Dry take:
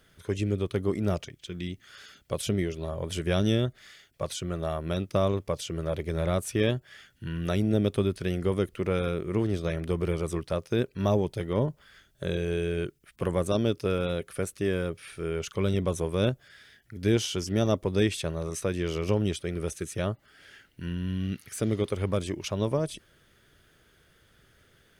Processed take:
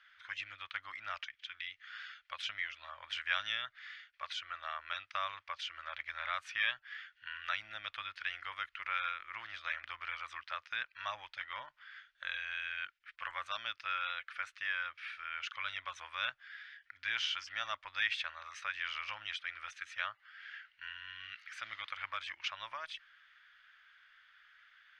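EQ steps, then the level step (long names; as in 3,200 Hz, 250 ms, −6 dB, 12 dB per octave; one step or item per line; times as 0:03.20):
inverse Chebyshev high-pass filter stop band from 450 Hz, stop band 60 dB
high-frequency loss of the air 230 metres
spectral tilt −4.5 dB per octave
+11.5 dB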